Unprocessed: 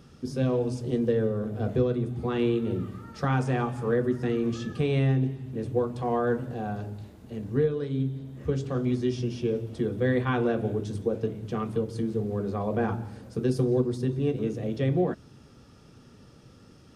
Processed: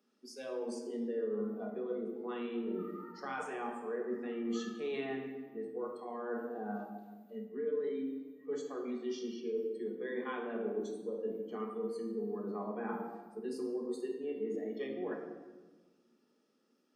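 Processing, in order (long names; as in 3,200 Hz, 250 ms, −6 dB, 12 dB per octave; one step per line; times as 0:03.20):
Butterworth high-pass 220 Hz 48 dB per octave
noise reduction from a noise print of the clip's start 20 dB
reversed playback
downward compressor 5 to 1, threshold −37 dBFS, peak gain reduction 14.5 dB
reversed playback
rectangular room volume 1,000 cubic metres, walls mixed, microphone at 1.4 metres
level −2 dB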